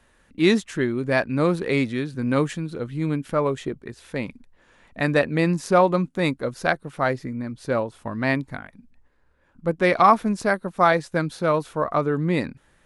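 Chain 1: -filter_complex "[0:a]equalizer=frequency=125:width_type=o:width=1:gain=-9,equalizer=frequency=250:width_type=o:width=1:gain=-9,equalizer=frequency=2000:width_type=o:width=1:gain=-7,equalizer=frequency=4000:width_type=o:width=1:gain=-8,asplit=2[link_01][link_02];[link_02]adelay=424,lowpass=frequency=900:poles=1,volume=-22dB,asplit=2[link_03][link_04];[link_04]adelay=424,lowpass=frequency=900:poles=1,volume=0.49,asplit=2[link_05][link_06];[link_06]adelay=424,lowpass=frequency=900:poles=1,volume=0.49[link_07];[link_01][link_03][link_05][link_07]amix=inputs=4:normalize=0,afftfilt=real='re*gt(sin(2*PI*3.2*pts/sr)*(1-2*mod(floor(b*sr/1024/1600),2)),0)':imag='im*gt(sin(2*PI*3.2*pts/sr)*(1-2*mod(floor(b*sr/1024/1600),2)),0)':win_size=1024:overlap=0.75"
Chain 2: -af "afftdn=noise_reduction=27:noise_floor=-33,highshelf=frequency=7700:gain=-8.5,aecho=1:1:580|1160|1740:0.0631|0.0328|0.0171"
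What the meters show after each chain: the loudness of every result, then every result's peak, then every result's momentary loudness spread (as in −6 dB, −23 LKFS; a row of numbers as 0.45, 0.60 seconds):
−31.0, −23.0 LKFS; −6.0, −4.0 dBFS; 15, 13 LU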